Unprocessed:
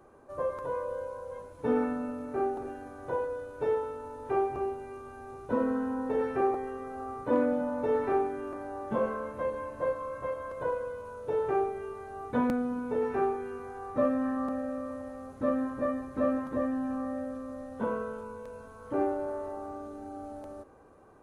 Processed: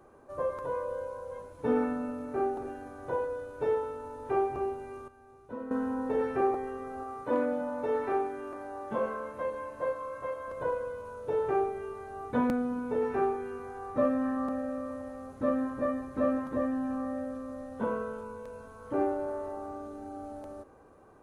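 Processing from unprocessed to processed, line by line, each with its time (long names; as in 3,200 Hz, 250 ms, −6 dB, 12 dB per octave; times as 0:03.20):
0:05.08–0:05.71: clip gain −11.5 dB
0:07.03–0:10.48: low-shelf EQ 290 Hz −7.5 dB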